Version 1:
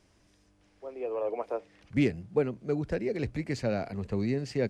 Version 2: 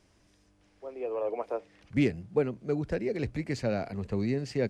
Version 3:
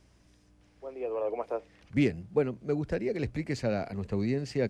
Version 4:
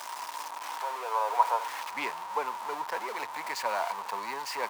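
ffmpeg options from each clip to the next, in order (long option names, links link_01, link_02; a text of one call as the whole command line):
ffmpeg -i in.wav -af anull out.wav
ffmpeg -i in.wav -af "aeval=exprs='val(0)+0.000631*(sin(2*PI*60*n/s)+sin(2*PI*2*60*n/s)/2+sin(2*PI*3*60*n/s)/3+sin(2*PI*4*60*n/s)/4+sin(2*PI*5*60*n/s)/5)':channel_layout=same" out.wav
ffmpeg -i in.wav -af "aeval=exprs='val(0)+0.5*0.0224*sgn(val(0))':channel_layout=same,highpass=frequency=950:width_type=q:width=11,volume=-1dB" out.wav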